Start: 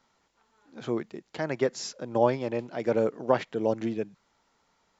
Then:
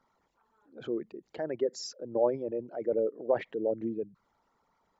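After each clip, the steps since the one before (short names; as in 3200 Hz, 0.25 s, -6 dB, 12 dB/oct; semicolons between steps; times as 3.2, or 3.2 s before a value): formant sharpening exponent 2; gain -3.5 dB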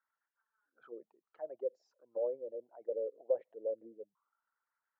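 auto-wah 520–1600 Hz, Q 7.9, down, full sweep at -28.5 dBFS; gain -2 dB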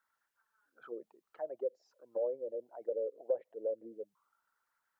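compressor 1.5:1, threshold -48 dBFS, peak gain reduction 8 dB; gain +6.5 dB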